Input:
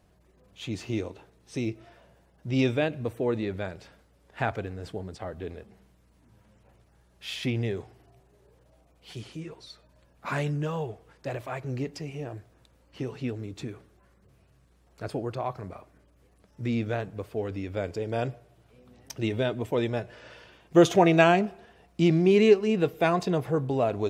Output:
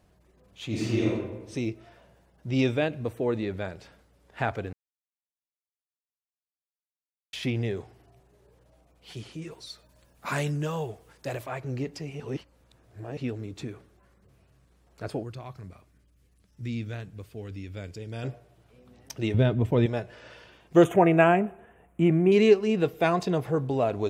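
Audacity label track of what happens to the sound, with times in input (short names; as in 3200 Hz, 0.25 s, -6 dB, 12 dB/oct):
0.660000	1.100000	reverb throw, RT60 1.1 s, DRR -5 dB
4.730000	7.330000	mute
9.420000	11.440000	high shelf 5300 Hz +11.5 dB
12.200000	13.170000	reverse
15.230000	18.240000	bell 690 Hz -13.5 dB 2.6 oct
19.340000	19.860000	tone controls bass +12 dB, treble -6 dB
20.840000	22.320000	Butterworth band-stop 4700 Hz, Q 0.77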